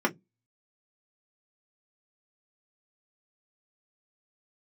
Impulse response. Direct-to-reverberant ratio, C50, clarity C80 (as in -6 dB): -1.0 dB, 24.5 dB, 37.0 dB